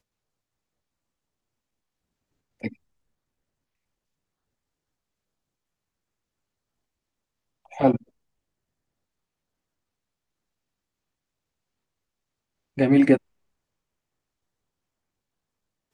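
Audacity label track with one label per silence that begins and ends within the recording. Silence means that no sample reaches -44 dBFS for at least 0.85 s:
2.730000	7.660000	silence
7.970000	12.770000	silence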